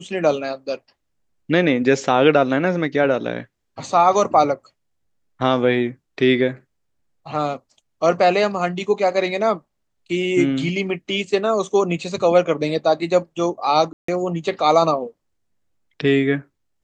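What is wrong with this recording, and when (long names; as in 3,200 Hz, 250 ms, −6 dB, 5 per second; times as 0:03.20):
0:13.93–0:14.08: drop-out 154 ms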